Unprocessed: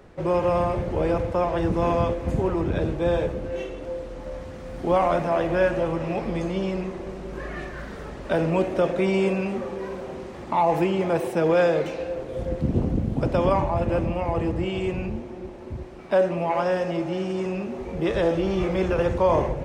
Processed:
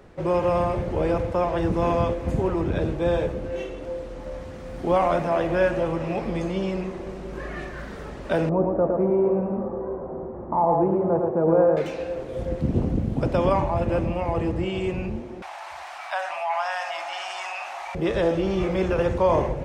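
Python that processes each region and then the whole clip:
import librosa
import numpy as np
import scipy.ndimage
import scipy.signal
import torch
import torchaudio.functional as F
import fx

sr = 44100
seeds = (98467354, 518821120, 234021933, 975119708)

y = fx.chain(x, sr, fx.lowpass(hz=1100.0, slope=24),
    fx.echo_single(ms=112, db=-4.0), at=(8.49, 11.77))
y = fx.chain(y, sr, fx.ellip_highpass(hz=710.0, order=4, stop_db=40),
    fx.env_flatten(amount_pct=50), at=(15.42, 17.95))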